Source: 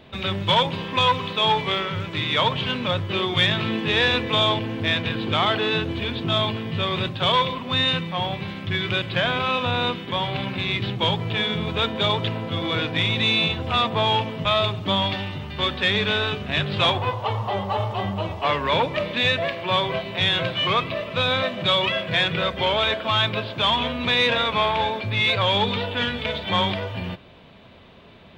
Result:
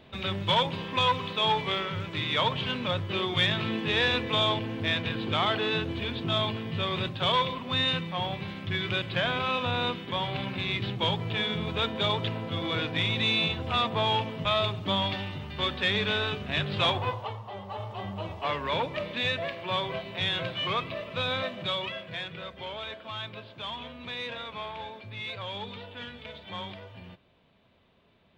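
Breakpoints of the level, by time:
0:17.12 −5.5 dB
0:17.43 −15.5 dB
0:18.29 −8 dB
0:21.46 −8 dB
0:22.31 −16.5 dB

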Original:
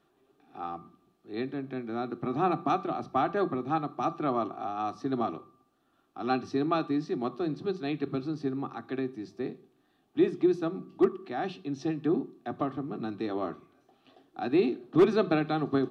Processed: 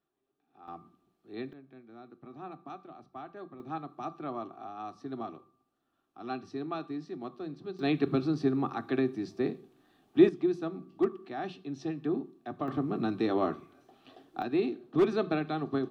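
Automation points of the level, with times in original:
−16 dB
from 0:00.68 −5.5 dB
from 0:01.53 −17 dB
from 0:03.60 −8.5 dB
from 0:07.79 +4 dB
from 0:10.29 −4 dB
from 0:12.68 +4 dB
from 0:14.42 −4 dB

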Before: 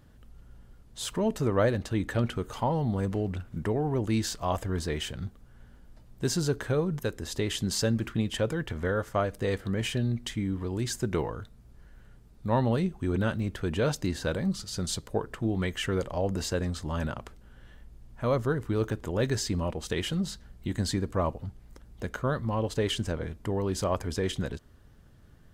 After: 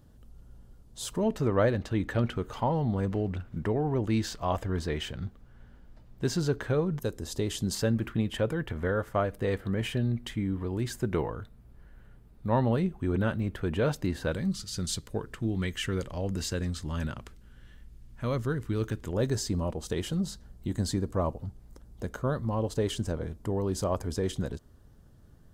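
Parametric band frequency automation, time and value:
parametric band −8 dB 1.6 octaves
2,000 Hz
from 0:01.23 10,000 Hz
from 0:07.00 2,000 Hz
from 0:07.75 6,200 Hz
from 0:14.32 720 Hz
from 0:19.13 2,300 Hz

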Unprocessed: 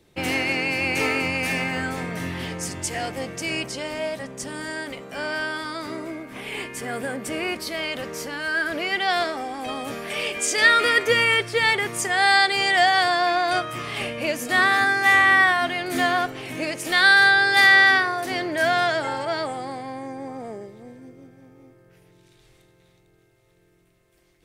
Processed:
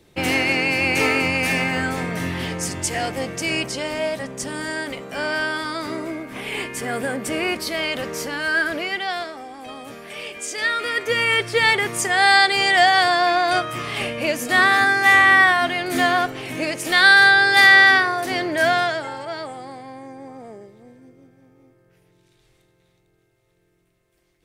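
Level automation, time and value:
0:08.59 +4 dB
0:09.26 −6 dB
0:10.83 −6 dB
0:11.50 +3 dB
0:18.69 +3 dB
0:19.10 −4 dB

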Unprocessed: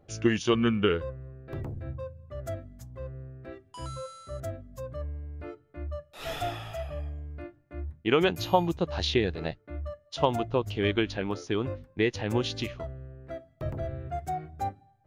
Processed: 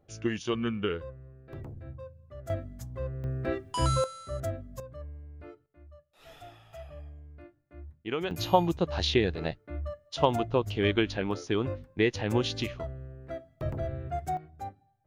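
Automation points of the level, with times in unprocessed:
−6 dB
from 0:02.50 +4 dB
from 0:03.24 +12 dB
from 0:04.04 +2.5 dB
from 0:04.80 −6.5 dB
from 0:05.66 −16.5 dB
from 0:06.73 −9 dB
from 0:08.31 +0.5 dB
from 0:14.37 −7.5 dB

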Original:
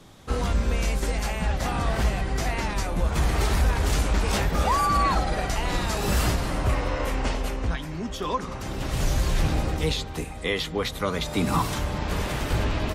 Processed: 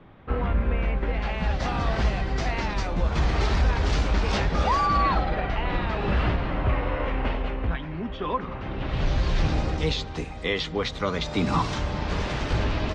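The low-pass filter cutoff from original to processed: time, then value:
low-pass filter 24 dB per octave
0:01.03 2,500 Hz
0:01.52 5,400 Hz
0:04.75 5,400 Hz
0:05.43 3,100 Hz
0:08.71 3,100 Hz
0:09.53 5,900 Hz

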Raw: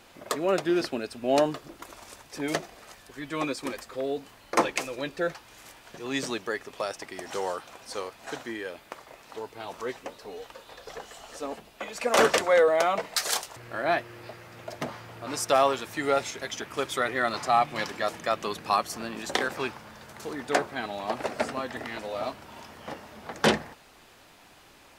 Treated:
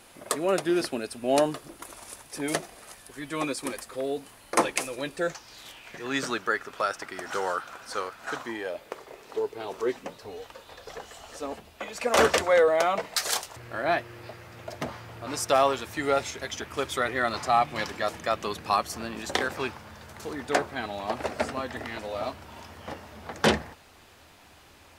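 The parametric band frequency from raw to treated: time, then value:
parametric band +12.5 dB 0.48 octaves
0:05.12 10,000 Hz
0:06.15 1,400 Hz
0:08.29 1,400 Hz
0:08.96 410 Hz
0:09.83 410 Hz
0:10.33 80 Hz

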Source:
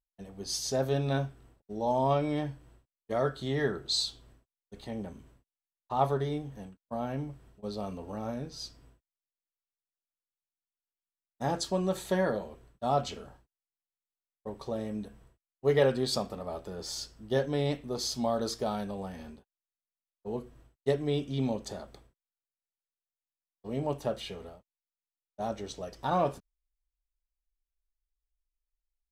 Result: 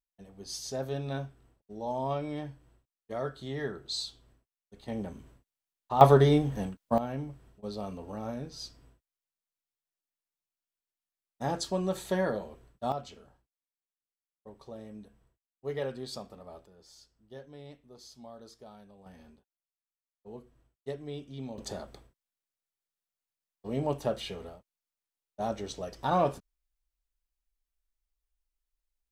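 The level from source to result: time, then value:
−5.5 dB
from 0:04.88 +2 dB
from 0:06.01 +10.5 dB
from 0:06.98 −1 dB
from 0:12.92 −10 dB
from 0:16.66 −18.5 dB
from 0:19.06 −10 dB
from 0:21.58 +1.5 dB

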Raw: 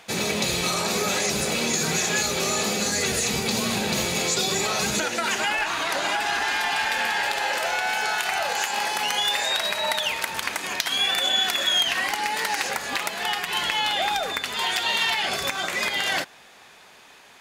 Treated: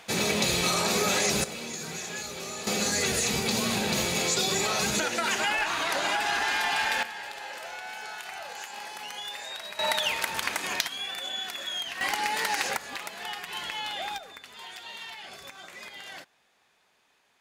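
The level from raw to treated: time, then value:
−1 dB
from 0:01.44 −12.5 dB
from 0:02.67 −2.5 dB
from 0:07.03 −14 dB
from 0:09.79 −2 dB
from 0:10.87 −12 dB
from 0:12.01 −2.5 dB
from 0:12.77 −10 dB
from 0:14.18 −18 dB

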